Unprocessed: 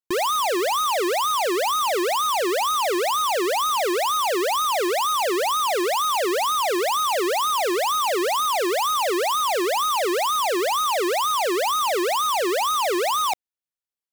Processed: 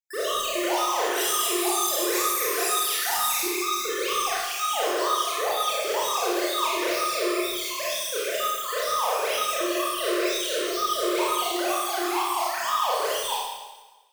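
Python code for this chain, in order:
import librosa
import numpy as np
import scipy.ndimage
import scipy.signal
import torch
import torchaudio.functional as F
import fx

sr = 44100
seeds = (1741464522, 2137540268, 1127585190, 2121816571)

y = fx.spec_dropout(x, sr, seeds[0], share_pct=64)
y = fx.peak_eq(y, sr, hz=11000.0, db=13.5, octaves=2.1, at=(1.13, 3.41))
y = 10.0 ** (-26.0 / 20.0) * np.tanh(y / 10.0 ** (-26.0 / 20.0))
y = fx.rev_schroeder(y, sr, rt60_s=1.2, comb_ms=25, drr_db=-8.5)
y = y * librosa.db_to_amplitude(-4.5)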